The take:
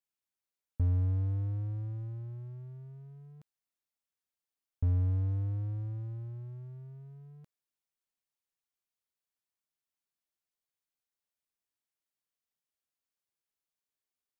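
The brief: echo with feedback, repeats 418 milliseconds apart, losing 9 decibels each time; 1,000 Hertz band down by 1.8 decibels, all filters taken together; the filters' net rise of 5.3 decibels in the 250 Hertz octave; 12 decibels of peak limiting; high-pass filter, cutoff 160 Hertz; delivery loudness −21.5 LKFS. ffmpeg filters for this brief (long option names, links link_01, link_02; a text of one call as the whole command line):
ffmpeg -i in.wav -af "highpass=160,equalizer=frequency=250:width_type=o:gain=7.5,equalizer=frequency=1000:width_type=o:gain=-3,alimiter=level_in=15dB:limit=-24dB:level=0:latency=1,volume=-15dB,aecho=1:1:418|836|1254|1672:0.355|0.124|0.0435|0.0152,volume=26dB" out.wav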